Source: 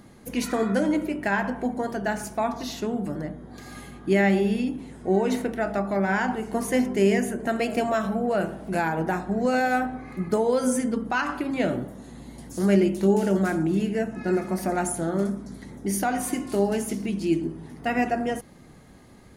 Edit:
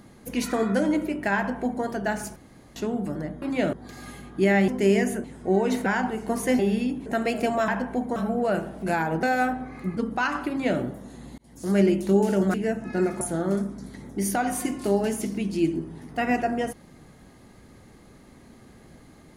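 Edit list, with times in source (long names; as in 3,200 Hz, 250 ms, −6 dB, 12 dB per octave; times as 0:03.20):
0:01.36–0:01.84: duplicate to 0:08.02
0:02.36–0:02.76: fill with room tone
0:04.37–0:04.84: swap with 0:06.84–0:07.40
0:05.46–0:06.11: remove
0:09.09–0:09.56: remove
0:10.30–0:10.91: remove
0:11.43–0:11.74: duplicate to 0:03.42
0:12.32–0:12.87: fade in equal-power
0:13.48–0:13.85: remove
0:14.52–0:14.89: remove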